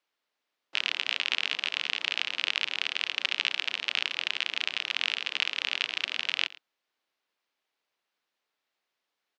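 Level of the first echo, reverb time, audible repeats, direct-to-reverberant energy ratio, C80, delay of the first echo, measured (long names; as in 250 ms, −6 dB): −20.0 dB, no reverb audible, 1, no reverb audible, no reverb audible, 111 ms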